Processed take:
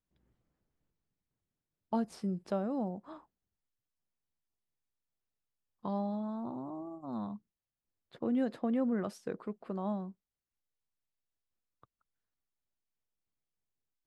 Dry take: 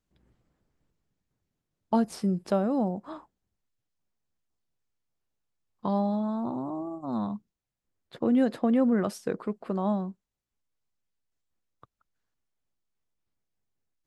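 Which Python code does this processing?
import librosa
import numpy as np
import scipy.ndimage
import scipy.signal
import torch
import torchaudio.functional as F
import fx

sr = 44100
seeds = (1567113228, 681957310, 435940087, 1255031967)

y = fx.high_shelf(x, sr, hz=8000.0, db=-6.5)
y = y * 10.0 ** (-8.0 / 20.0)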